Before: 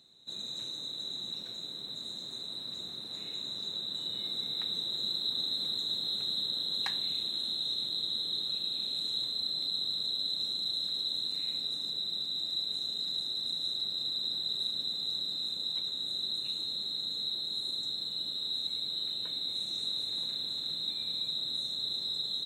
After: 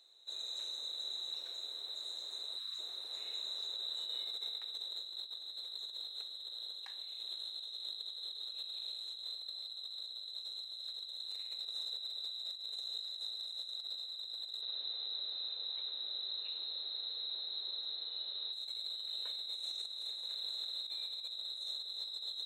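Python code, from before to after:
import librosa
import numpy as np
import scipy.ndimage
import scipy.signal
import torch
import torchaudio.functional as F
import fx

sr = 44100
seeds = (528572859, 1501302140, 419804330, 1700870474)

y = fx.spec_erase(x, sr, start_s=2.58, length_s=0.2, low_hz=290.0, high_hz=1000.0)
y = fx.highpass(y, sr, hz=250.0, slope=12, at=(8.51, 11.29))
y = fx.lowpass(y, sr, hz=3900.0, slope=24, at=(14.61, 18.53))
y = scipy.signal.sosfilt(scipy.signal.butter(4, 460.0, 'highpass', fs=sr, output='sos'), y)
y = fx.over_compress(y, sr, threshold_db=-37.0, ratio=-0.5)
y = y * 10.0 ** (-5.0 / 20.0)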